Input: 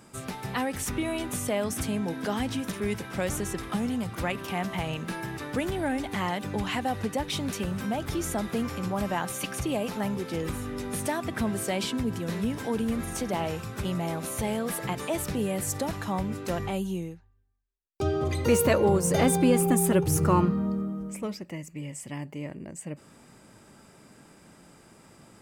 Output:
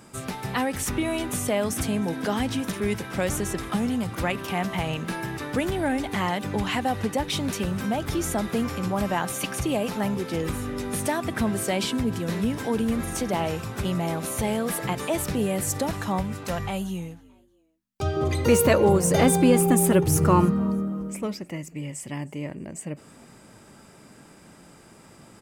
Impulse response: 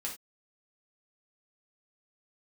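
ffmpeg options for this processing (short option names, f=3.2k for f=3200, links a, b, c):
-filter_complex "[0:a]asettb=1/sr,asplit=3[a][b][c];[a]atrim=end=16.214[d];[b]atrim=start=16.21:end=18.17,asetpts=PTS-STARTPTS,afade=t=in:d=0.004:c=qsin,afade=t=out:st=1.956:d=0.004:c=qsin,equalizer=f=330:t=o:w=0.92:g=-9.5[e];[c]atrim=start=18.166[f];[d][e]acrossfade=d=0.004:c1=hsin:c2=qsin[g];[g][f]acrossfade=d=0.004:c1=qsin:c2=hsin,asplit=3[h][i][j];[i]adelay=311,afreqshift=79,volume=-24dB[k];[j]adelay=622,afreqshift=158,volume=-33.6dB[l];[h][k][l]amix=inputs=3:normalize=0,volume=3.5dB"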